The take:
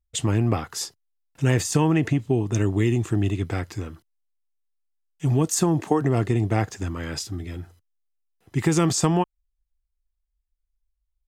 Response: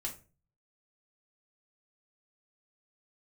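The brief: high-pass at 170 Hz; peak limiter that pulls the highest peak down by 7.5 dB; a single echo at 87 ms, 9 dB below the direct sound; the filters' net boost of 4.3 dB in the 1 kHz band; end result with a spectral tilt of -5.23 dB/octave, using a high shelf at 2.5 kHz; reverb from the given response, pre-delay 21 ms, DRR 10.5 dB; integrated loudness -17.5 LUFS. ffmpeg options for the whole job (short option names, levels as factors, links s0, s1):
-filter_complex "[0:a]highpass=170,equalizer=f=1000:t=o:g=6,highshelf=f=2500:g=-3,alimiter=limit=0.2:level=0:latency=1,aecho=1:1:87:0.355,asplit=2[s0][s1];[1:a]atrim=start_sample=2205,adelay=21[s2];[s1][s2]afir=irnorm=-1:irlink=0,volume=0.299[s3];[s0][s3]amix=inputs=2:normalize=0,volume=2.66"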